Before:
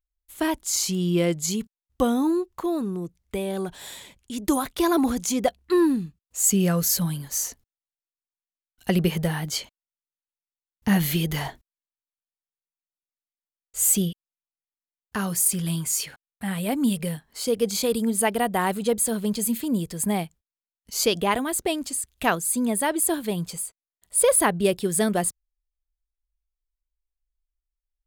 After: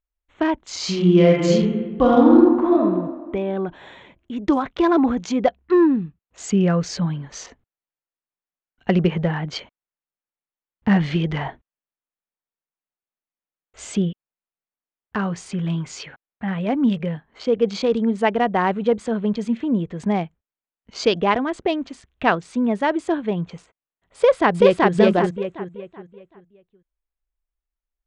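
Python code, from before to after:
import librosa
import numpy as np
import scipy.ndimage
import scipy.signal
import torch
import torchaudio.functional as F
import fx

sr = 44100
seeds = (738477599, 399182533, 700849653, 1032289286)

y = fx.reverb_throw(x, sr, start_s=0.77, length_s=2.04, rt60_s=1.4, drr_db=-4.0)
y = fx.echo_throw(y, sr, start_s=24.16, length_s=0.76, ms=380, feedback_pct=35, wet_db=-0.5)
y = fx.wiener(y, sr, points=9)
y = scipy.signal.sosfilt(scipy.signal.bessel(8, 3500.0, 'lowpass', norm='mag', fs=sr, output='sos'), y)
y = fx.low_shelf(y, sr, hz=86.0, db=-7.5)
y = y * 10.0 ** (5.0 / 20.0)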